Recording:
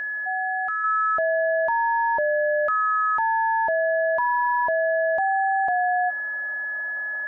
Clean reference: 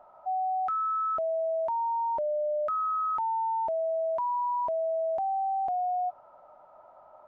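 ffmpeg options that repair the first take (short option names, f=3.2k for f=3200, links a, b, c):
-af "bandreject=f=1.7k:w=30,asetnsamples=n=441:p=0,asendcmd='0.84 volume volume -6dB',volume=0dB"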